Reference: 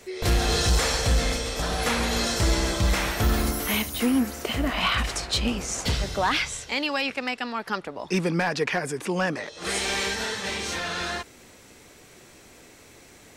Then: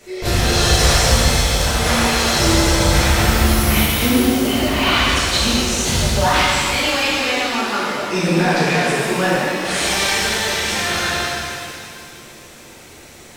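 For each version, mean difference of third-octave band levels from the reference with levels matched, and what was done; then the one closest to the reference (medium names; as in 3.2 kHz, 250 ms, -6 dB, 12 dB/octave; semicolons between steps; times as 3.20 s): 5.5 dB: pitch-shifted reverb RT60 2.3 s, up +7 st, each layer -8 dB, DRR -8.5 dB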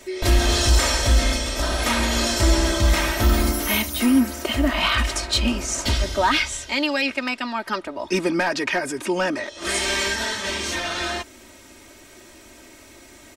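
2.0 dB: comb 3.2 ms, depth 76%; trim +2 dB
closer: second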